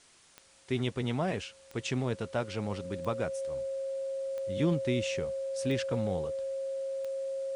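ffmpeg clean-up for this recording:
-af "adeclick=t=4,bandreject=f=540:w=30,agate=range=0.0891:threshold=0.00355"

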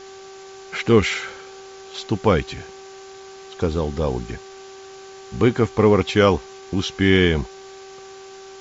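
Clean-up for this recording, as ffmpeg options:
-af "bandreject=f=386.5:t=h:w=4,bandreject=f=773:t=h:w=4,bandreject=f=1159.5:t=h:w=4,bandreject=f=1546:t=h:w=4,afftdn=nr=24:nf=-40"

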